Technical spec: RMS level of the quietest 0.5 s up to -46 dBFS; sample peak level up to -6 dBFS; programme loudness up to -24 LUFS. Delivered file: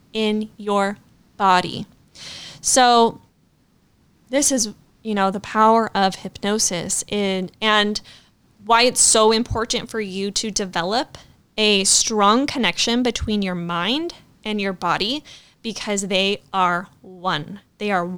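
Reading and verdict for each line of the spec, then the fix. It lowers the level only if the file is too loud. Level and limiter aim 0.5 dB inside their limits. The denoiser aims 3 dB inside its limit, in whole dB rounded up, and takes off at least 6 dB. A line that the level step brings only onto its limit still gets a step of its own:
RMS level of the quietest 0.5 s -59 dBFS: OK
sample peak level -4.0 dBFS: fail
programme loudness -19.0 LUFS: fail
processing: gain -5.5 dB

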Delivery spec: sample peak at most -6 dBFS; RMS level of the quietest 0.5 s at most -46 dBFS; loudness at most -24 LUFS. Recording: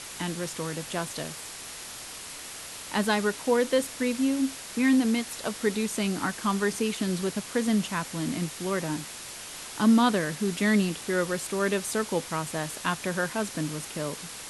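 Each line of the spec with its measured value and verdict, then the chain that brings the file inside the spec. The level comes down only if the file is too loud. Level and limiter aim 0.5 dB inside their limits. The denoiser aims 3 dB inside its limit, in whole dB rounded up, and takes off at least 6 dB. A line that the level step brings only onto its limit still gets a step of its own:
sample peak -10.5 dBFS: OK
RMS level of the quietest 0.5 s -41 dBFS: fail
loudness -28.0 LUFS: OK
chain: denoiser 8 dB, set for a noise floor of -41 dBFS

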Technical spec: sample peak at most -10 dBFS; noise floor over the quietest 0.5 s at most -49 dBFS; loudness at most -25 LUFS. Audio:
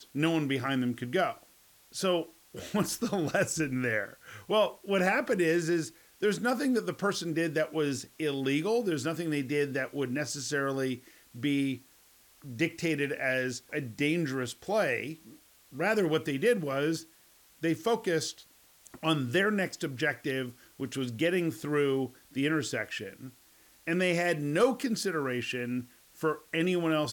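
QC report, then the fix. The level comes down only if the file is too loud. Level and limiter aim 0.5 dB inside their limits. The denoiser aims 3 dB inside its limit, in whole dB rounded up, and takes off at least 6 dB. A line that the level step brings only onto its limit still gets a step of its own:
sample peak -14.0 dBFS: OK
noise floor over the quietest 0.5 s -61 dBFS: OK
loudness -30.5 LUFS: OK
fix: none

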